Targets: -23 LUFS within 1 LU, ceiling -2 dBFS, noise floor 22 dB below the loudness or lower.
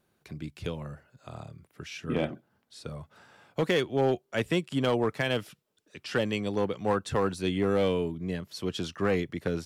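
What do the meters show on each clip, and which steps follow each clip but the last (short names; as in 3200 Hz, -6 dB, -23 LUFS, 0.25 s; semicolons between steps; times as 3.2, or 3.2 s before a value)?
clipped 0.6%; flat tops at -18.5 dBFS; loudness -29.5 LUFS; peak -18.5 dBFS; loudness target -23.0 LUFS
-> clip repair -18.5 dBFS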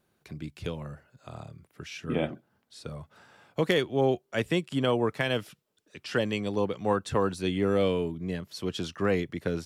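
clipped 0.0%; loudness -29.0 LUFS; peak -9.5 dBFS; loudness target -23.0 LUFS
-> gain +6 dB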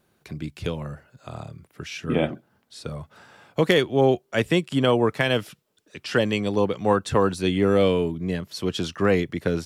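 loudness -23.0 LUFS; peak -3.5 dBFS; noise floor -67 dBFS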